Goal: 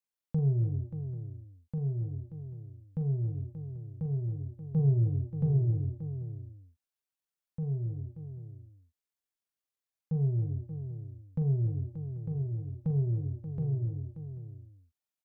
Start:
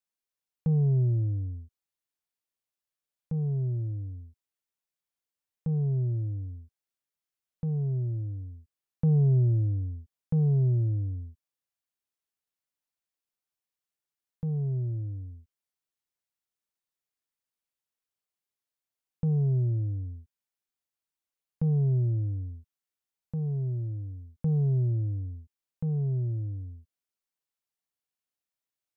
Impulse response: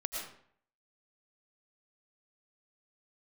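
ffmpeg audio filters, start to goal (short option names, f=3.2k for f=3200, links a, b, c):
-af "atempo=1.9,aecho=1:1:43|271|293|581|788:0.355|0.168|0.224|0.299|0.112,volume=-3dB"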